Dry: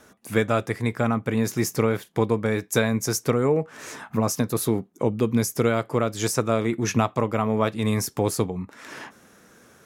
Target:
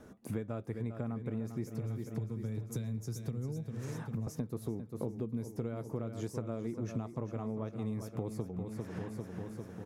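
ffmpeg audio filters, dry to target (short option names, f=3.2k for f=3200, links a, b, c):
-filter_complex "[0:a]asettb=1/sr,asplit=3[a][b][c];[a]atrim=end=1.704[d];[b]atrim=start=1.7:end=4.27,asetpts=PTS-STARTPTS,afade=t=in:d=0.004:c=qsin,afade=t=out:st=2.566:d=0.004:c=qsin,acrossover=split=170|3000[e][f][g];[f]acompressor=threshold=-37dB:ratio=5[h];[e][h][g]amix=inputs=3:normalize=0[i];[c]atrim=start=4.266[j];[d][i]acrossfade=d=0.004:c1=hsin:c2=qsin[k];[k][j]acrossfade=d=0.004:c1=qsin:c2=hsin,tiltshelf=f=760:g=8.5,aecho=1:1:398|796|1194|1592|1990|2388:0.299|0.158|0.0839|0.0444|0.0236|0.0125,acompressor=threshold=-32dB:ratio=5,volume=-4dB"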